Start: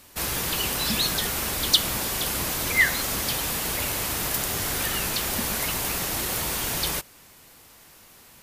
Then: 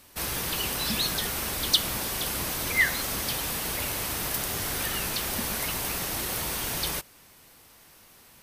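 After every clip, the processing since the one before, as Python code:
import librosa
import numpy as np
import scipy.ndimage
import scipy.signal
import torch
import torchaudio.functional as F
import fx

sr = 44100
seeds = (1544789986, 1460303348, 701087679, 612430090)

y = fx.notch(x, sr, hz=7100.0, q=14.0)
y = F.gain(torch.from_numpy(y), -3.0).numpy()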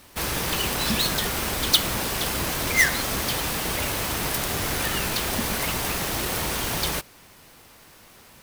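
y = fx.halfwave_hold(x, sr)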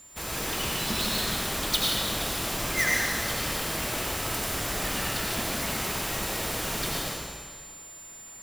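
y = x + 10.0 ** (-40.0 / 20.0) * np.sin(2.0 * np.pi * 7200.0 * np.arange(len(x)) / sr)
y = fx.rev_freeverb(y, sr, rt60_s=1.8, hf_ratio=0.95, predelay_ms=50, drr_db=-3.5)
y = F.gain(torch.from_numpy(y), -8.5).numpy()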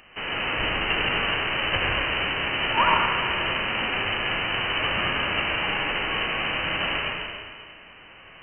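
y = fx.envelope_flatten(x, sr, power=0.6)
y = fx.freq_invert(y, sr, carrier_hz=3000)
y = F.gain(torch.from_numpy(y), 8.0).numpy()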